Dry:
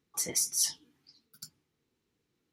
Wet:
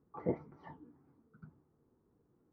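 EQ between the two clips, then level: LPF 1200 Hz 24 dB/oct; air absorption 260 m; +8.0 dB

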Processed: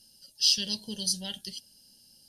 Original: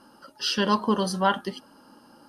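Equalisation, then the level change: Chebyshev band-stop 280–4800 Hz, order 2; passive tone stack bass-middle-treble 10-0-10; bell 1200 Hz +12 dB 1.1 oct; +8.0 dB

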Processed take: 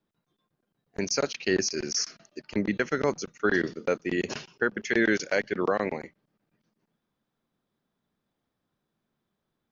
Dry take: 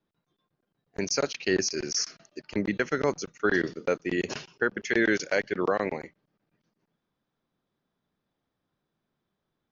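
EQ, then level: bell 220 Hz +3.5 dB 0.22 oct; 0.0 dB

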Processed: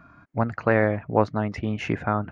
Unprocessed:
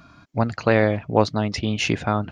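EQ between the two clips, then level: resonant high shelf 2600 Hz -12.5 dB, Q 1.5; -3.0 dB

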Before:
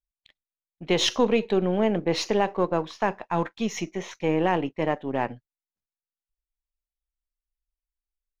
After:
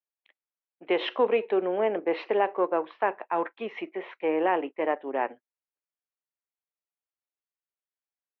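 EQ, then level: HPF 330 Hz 24 dB/oct; inverse Chebyshev low-pass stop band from 8300 Hz, stop band 60 dB; air absorption 98 m; 0.0 dB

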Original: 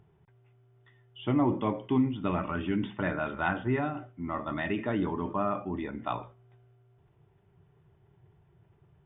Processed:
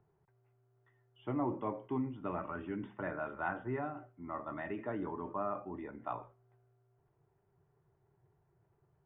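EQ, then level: three-band isolator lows -13 dB, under 300 Hz, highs -21 dB, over 2000 Hz; low shelf 69 Hz +10.5 dB; bell 130 Hz +5.5 dB 0.6 oct; -6.0 dB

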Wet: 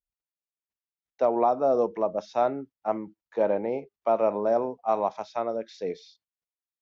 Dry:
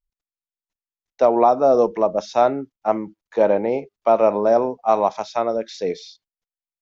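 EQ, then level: HPF 41 Hz; high shelf 5100 Hz -10 dB; -7.5 dB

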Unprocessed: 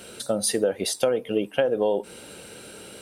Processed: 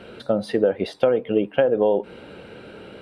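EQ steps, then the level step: air absorption 390 m; +5.0 dB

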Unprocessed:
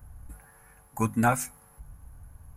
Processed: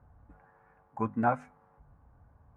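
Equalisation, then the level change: HPF 98 Hz 6 dB/oct; LPF 1100 Hz 12 dB/oct; low shelf 260 Hz -7.5 dB; 0.0 dB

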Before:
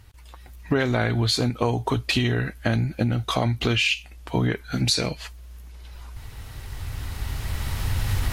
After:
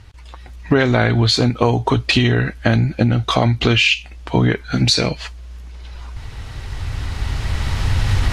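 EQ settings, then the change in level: LPF 6400 Hz 12 dB/oct; +7.5 dB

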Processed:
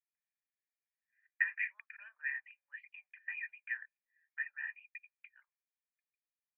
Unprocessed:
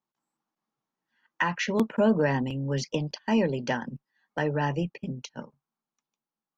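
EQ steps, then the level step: steep high-pass 1900 Hz 36 dB/oct; rippled Chebyshev low-pass 2500 Hz, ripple 9 dB; +3.5 dB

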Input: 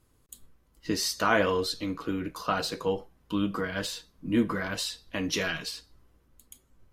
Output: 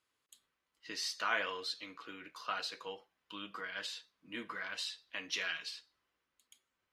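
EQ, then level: band-pass 2600 Hz, Q 0.87; -4.0 dB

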